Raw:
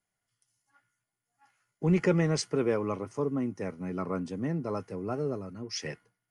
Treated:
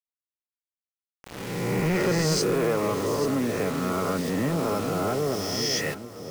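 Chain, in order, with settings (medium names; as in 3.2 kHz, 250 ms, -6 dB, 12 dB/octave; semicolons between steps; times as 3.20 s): reverse spectral sustain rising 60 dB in 1.36 s; bass shelf 430 Hz -2.5 dB; in parallel at +2.5 dB: peak limiter -22.5 dBFS, peak gain reduction 11 dB; on the sum: bit crusher 6-bit; saturation -19.5 dBFS, distortion -13 dB; on a send: echo whose repeats swap between lows and highs 420 ms, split 850 Hz, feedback 51%, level -6.5 dB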